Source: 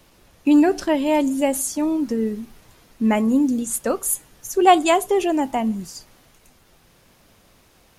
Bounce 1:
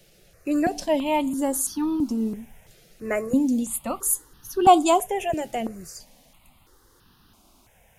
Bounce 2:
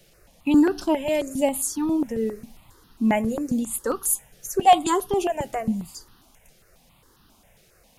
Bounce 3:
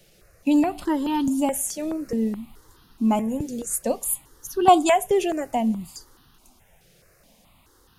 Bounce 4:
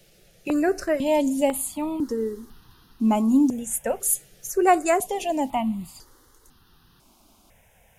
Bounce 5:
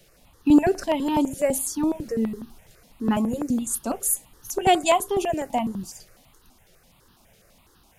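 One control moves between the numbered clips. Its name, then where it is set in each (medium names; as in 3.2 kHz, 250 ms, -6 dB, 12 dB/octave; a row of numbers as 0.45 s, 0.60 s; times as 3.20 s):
stepped phaser, rate: 3 Hz, 7.4 Hz, 4.7 Hz, 2 Hz, 12 Hz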